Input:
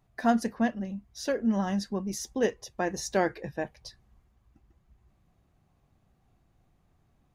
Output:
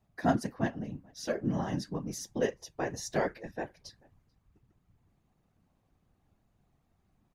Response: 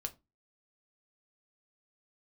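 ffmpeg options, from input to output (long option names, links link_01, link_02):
-filter_complex "[0:a]asplit=2[link_01][link_02];[link_02]adelay=437.3,volume=-28dB,highshelf=frequency=4000:gain=-9.84[link_03];[link_01][link_03]amix=inputs=2:normalize=0,afftfilt=real='hypot(re,im)*cos(2*PI*random(0))':imag='hypot(re,im)*sin(2*PI*random(1))':win_size=512:overlap=0.75,volume=2dB"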